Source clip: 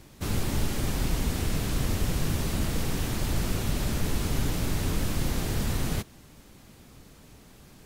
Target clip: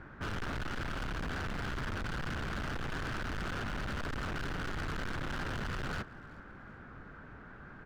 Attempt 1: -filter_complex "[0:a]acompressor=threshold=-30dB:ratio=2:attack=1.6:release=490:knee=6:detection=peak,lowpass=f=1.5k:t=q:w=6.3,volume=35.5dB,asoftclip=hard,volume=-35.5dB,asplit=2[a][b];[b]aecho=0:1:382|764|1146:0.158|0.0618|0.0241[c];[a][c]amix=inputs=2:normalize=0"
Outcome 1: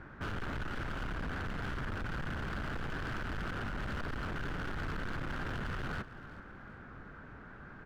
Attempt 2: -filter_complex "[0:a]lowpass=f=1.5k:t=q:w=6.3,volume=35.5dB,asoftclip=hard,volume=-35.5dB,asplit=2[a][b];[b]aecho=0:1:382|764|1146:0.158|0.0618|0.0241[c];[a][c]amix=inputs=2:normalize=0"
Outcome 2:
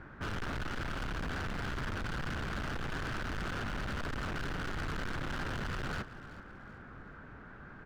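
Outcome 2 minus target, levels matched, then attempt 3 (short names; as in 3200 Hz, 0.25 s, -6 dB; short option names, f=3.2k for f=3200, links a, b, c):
echo-to-direct +6.5 dB
-filter_complex "[0:a]lowpass=f=1.5k:t=q:w=6.3,volume=35.5dB,asoftclip=hard,volume=-35.5dB,asplit=2[a][b];[b]aecho=0:1:382|764|1146:0.075|0.0292|0.0114[c];[a][c]amix=inputs=2:normalize=0"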